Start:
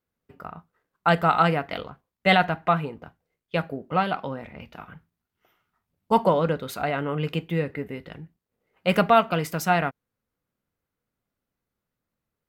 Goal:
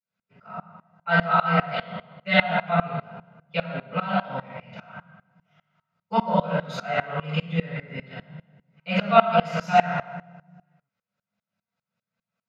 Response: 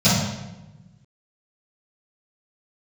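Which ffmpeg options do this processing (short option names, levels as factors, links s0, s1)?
-filter_complex "[0:a]asplit=2[s0][s1];[s1]alimiter=limit=0.15:level=0:latency=1:release=287,volume=1.12[s2];[s0][s2]amix=inputs=2:normalize=0,bandpass=f=2000:t=q:w=0.93:csg=0[s3];[1:a]atrim=start_sample=2205[s4];[s3][s4]afir=irnorm=-1:irlink=0,aeval=exprs='val(0)*pow(10,-22*if(lt(mod(-5*n/s,1),2*abs(-5)/1000),1-mod(-5*n/s,1)/(2*abs(-5)/1000),(mod(-5*n/s,1)-2*abs(-5)/1000)/(1-2*abs(-5)/1000))/20)':c=same,volume=0.188"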